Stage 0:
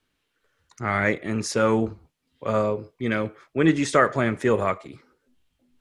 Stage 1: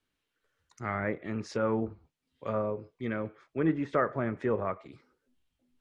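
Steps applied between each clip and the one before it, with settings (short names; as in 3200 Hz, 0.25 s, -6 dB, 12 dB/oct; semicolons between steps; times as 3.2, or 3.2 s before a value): treble ducked by the level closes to 1500 Hz, closed at -19.5 dBFS; gain -8 dB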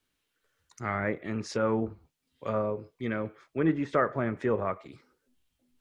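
high shelf 4500 Hz +6.5 dB; gain +1.5 dB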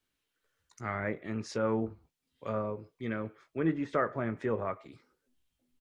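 doubler 18 ms -13.5 dB; gain -4 dB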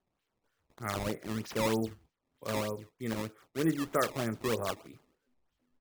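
decimation with a swept rate 17×, swing 160% 3.2 Hz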